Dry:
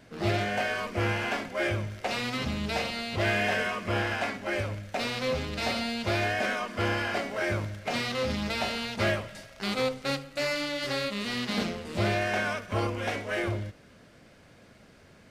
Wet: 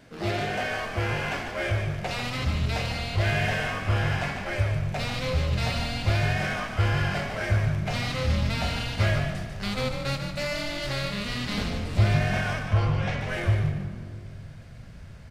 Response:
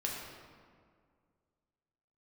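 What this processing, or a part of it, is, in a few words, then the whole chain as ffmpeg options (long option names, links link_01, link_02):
saturated reverb return: -filter_complex "[0:a]asplit=2[link_01][link_02];[1:a]atrim=start_sample=2205[link_03];[link_02][link_03]afir=irnorm=-1:irlink=0,asoftclip=type=tanh:threshold=-29.5dB,volume=-4.5dB[link_04];[link_01][link_04]amix=inputs=2:normalize=0,asettb=1/sr,asplit=3[link_05][link_06][link_07];[link_05]atrim=end=12.634[link_08];[link_06]atrim=start=12.63:end=13.21,asetpts=PTS-STARTPTS,afade=type=in:duration=0.004:curve=qsin,afade=type=out:start_time=0.576:duration=0.004:curve=qsin,lowpass=5500[link_09];[link_07]atrim=start=13.206[link_10];[link_08][link_09]acrossfade=duration=0.004:curve1=hsin:curve2=qsin[link_11];[link_11][link_10]acrossfade=duration=0.004:curve1=qsin:curve2=hsin,asubboost=boost=10.5:cutoff=88,asplit=5[link_12][link_13][link_14][link_15][link_16];[link_13]adelay=147,afreqshift=44,volume=-7dB[link_17];[link_14]adelay=294,afreqshift=88,volume=-17.2dB[link_18];[link_15]adelay=441,afreqshift=132,volume=-27.3dB[link_19];[link_16]adelay=588,afreqshift=176,volume=-37.5dB[link_20];[link_12][link_17][link_18][link_19][link_20]amix=inputs=5:normalize=0,volume=-2.5dB"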